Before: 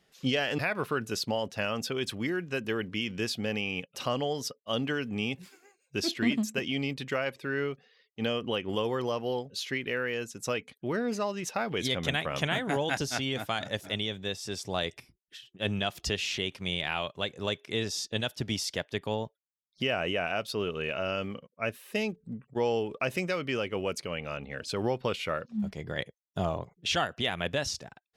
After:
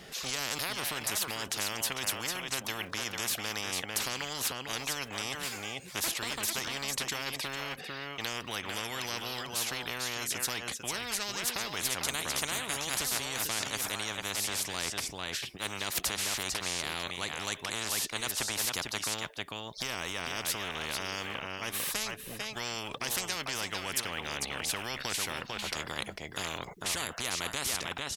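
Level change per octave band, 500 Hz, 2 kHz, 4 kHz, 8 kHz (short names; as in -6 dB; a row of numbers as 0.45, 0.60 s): -10.5, -1.0, +1.0, +9.5 dB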